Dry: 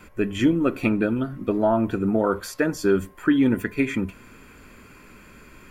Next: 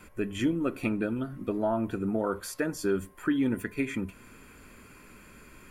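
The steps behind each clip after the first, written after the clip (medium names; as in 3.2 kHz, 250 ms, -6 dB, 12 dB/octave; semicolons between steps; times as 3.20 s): peaking EQ 10 kHz +7.5 dB 0.66 oct; in parallel at -3 dB: compression, threshold -31 dBFS, peak gain reduction 15.5 dB; on the sum: trim -9 dB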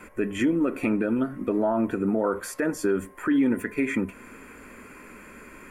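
graphic EQ 125/250/500/1000/2000/4000/8000 Hz -3/+7/+7/+5/+9/-5/+4 dB; peak limiter -15 dBFS, peak gain reduction 8 dB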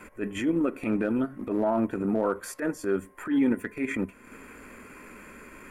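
transient shaper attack -11 dB, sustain -7 dB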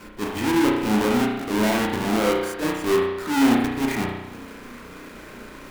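square wave that keeps the level; spring tank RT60 1 s, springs 33 ms, chirp 50 ms, DRR -1.5 dB; trim -1.5 dB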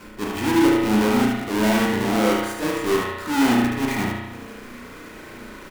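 feedback delay 75 ms, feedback 32%, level -4.5 dB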